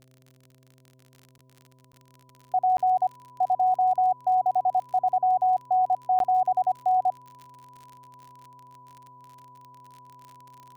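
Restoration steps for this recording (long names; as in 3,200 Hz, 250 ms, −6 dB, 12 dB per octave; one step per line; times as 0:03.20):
click removal
hum removal 129.4 Hz, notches 5
notch filter 990 Hz, Q 30
repair the gap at 0:01.38/0:01.92/0:02.77/0:06.19, 12 ms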